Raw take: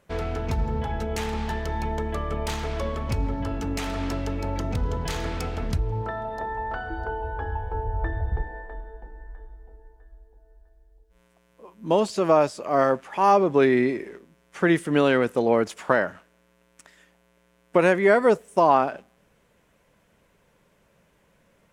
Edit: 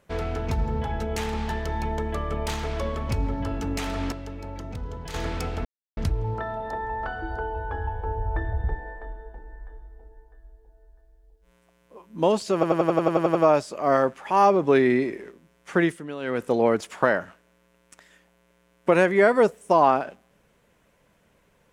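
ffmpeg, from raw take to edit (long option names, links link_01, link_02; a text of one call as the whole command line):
ffmpeg -i in.wav -filter_complex "[0:a]asplit=15[link_01][link_02][link_03][link_04][link_05][link_06][link_07][link_08][link_09][link_10][link_11][link_12][link_13][link_14][link_15];[link_01]atrim=end=4.122[link_16];[link_02]atrim=start=4.118:end=5.142,asetpts=PTS-STARTPTS,volume=-8dB[link_17];[link_03]atrim=start=5.138:end=5.65,asetpts=PTS-STARTPTS,afade=type=out:start_time=0.508:duration=0.004:curve=hsin,apad=pad_dur=0.32[link_18];[link_04]atrim=start=5.65:end=12.312,asetpts=PTS-STARTPTS,afade=type=in:duration=0.004:curve=hsin[link_19];[link_05]atrim=start=12.218:end=12.312[link_20];[link_06]atrim=start=12.218:end=12.312[link_21];[link_07]atrim=start=12.218:end=12.312[link_22];[link_08]atrim=start=12.218:end=12.312[link_23];[link_09]atrim=start=12.218:end=12.312[link_24];[link_10]atrim=start=12.218:end=12.312[link_25];[link_11]atrim=start=12.218:end=12.312[link_26];[link_12]atrim=start=12.218:end=12.312[link_27];[link_13]atrim=start=12.218:end=14.94,asetpts=PTS-STARTPTS,afade=type=out:start_time=2.422:duration=0.3:silence=0.177828[link_28];[link_14]atrim=start=14.94:end=15.07,asetpts=PTS-STARTPTS,volume=-15dB[link_29];[link_15]atrim=start=15.07,asetpts=PTS-STARTPTS,afade=type=in:duration=0.3:silence=0.177828[link_30];[link_16][link_17]acrossfade=duration=0.004:curve1=hsin:curve2=hsin[link_31];[link_18][link_19]concat=n=2:v=0:a=1[link_32];[link_31][link_32]acrossfade=duration=0.004:curve1=hsin:curve2=hsin[link_33];[link_33][link_20]acrossfade=duration=0.004:curve1=hsin:curve2=hsin[link_34];[link_34][link_21]acrossfade=duration=0.004:curve1=hsin:curve2=hsin[link_35];[link_35][link_22]acrossfade=duration=0.004:curve1=hsin:curve2=hsin[link_36];[link_36][link_23]acrossfade=duration=0.004:curve1=hsin:curve2=hsin[link_37];[link_37][link_24]acrossfade=duration=0.004:curve1=hsin:curve2=hsin[link_38];[link_38][link_25]acrossfade=duration=0.004:curve1=hsin:curve2=hsin[link_39];[link_39][link_26]acrossfade=duration=0.004:curve1=hsin:curve2=hsin[link_40];[link_40][link_27]acrossfade=duration=0.004:curve1=hsin:curve2=hsin[link_41];[link_28][link_29][link_30]concat=n=3:v=0:a=1[link_42];[link_41][link_42]acrossfade=duration=0.004:curve1=hsin:curve2=hsin" out.wav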